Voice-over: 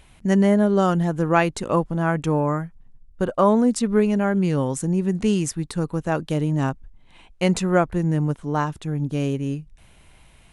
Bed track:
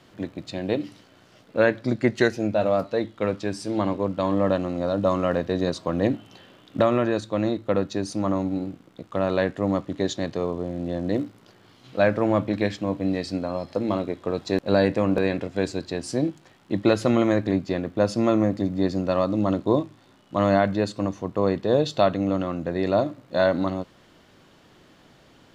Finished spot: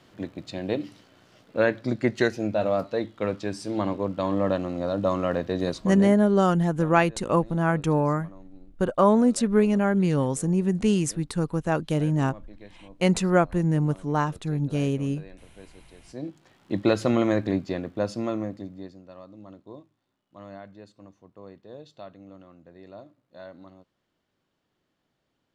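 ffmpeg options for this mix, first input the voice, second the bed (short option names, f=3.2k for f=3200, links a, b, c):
-filter_complex "[0:a]adelay=5600,volume=-1.5dB[a];[1:a]volume=19dB,afade=t=out:st=5.7:d=0.51:silence=0.0891251,afade=t=in:st=16.04:d=0.63:silence=0.0841395,afade=t=out:st=17.46:d=1.52:silence=0.0891251[b];[a][b]amix=inputs=2:normalize=0"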